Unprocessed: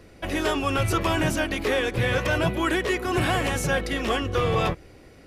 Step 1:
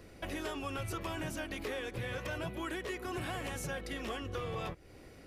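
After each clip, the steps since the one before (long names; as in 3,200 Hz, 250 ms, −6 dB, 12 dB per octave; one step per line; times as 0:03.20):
high-shelf EQ 11,000 Hz +5.5 dB
downward compressor 3 to 1, threshold −35 dBFS, peak gain reduction 12 dB
level −4.5 dB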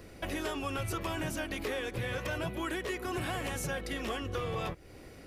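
high-shelf EQ 12,000 Hz +3.5 dB
level +3.5 dB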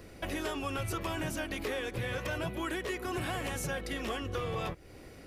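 no processing that can be heard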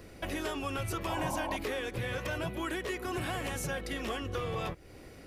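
sound drawn into the spectrogram noise, 0:01.07–0:01.57, 510–1,100 Hz −37 dBFS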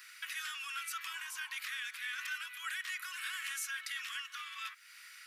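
brickwall limiter −32.5 dBFS, peak gain reduction 9.5 dB
Butterworth high-pass 1,300 Hz 48 dB per octave
level +6 dB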